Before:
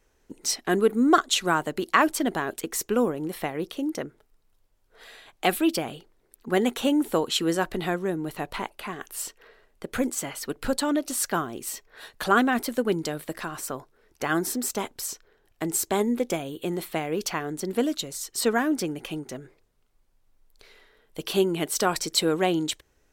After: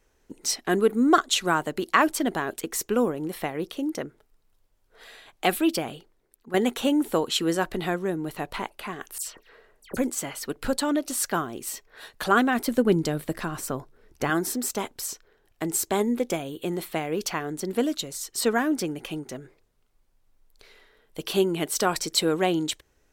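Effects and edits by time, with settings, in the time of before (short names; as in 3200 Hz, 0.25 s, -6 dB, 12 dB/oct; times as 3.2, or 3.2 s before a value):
5.9–6.54 fade out, to -11 dB
9.18–9.97 dispersion lows, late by 95 ms, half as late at 2600 Hz
12.67–14.3 low shelf 300 Hz +9.5 dB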